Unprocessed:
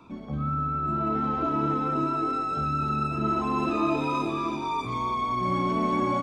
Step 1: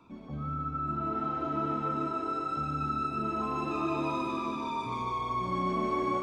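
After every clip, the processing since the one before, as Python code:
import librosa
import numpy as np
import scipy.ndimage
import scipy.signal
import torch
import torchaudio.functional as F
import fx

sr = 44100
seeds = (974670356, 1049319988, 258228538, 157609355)

y = fx.echo_feedback(x, sr, ms=149, feedback_pct=59, wet_db=-4)
y = F.gain(torch.from_numpy(y), -7.0).numpy()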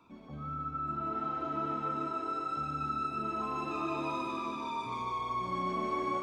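y = fx.low_shelf(x, sr, hz=430.0, db=-5.5)
y = F.gain(torch.from_numpy(y), -1.5).numpy()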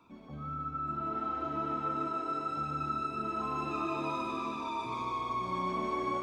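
y = x + 10.0 ** (-10.5 / 20.0) * np.pad(x, (int(840 * sr / 1000.0), 0))[:len(x)]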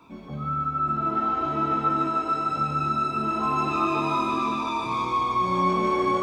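y = fx.doubler(x, sr, ms=22.0, db=-4)
y = F.gain(torch.from_numpy(y), 8.5).numpy()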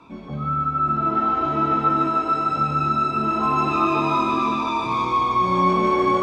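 y = fx.air_absorb(x, sr, metres=50.0)
y = F.gain(torch.from_numpy(y), 4.5).numpy()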